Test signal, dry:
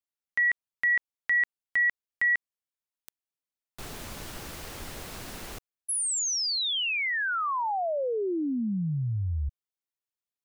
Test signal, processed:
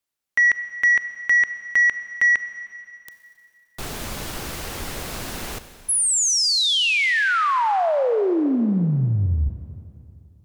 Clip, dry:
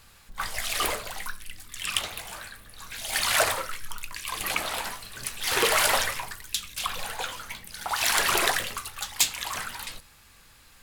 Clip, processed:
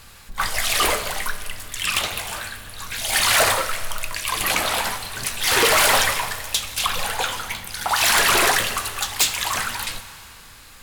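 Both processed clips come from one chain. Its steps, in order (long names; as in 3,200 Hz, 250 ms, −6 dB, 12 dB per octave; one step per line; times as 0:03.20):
sine wavefolder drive 12 dB, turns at −4.5 dBFS
four-comb reverb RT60 2.7 s, combs from 30 ms, DRR 11.5 dB
level −7 dB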